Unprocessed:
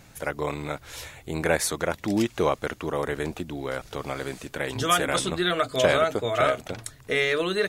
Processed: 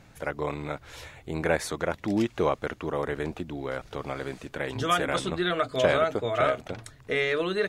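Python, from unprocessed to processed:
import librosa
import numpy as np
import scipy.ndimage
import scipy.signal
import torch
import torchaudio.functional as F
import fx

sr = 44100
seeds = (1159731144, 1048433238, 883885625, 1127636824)

y = fx.lowpass(x, sr, hz=3100.0, slope=6)
y = y * 10.0 ** (-1.5 / 20.0)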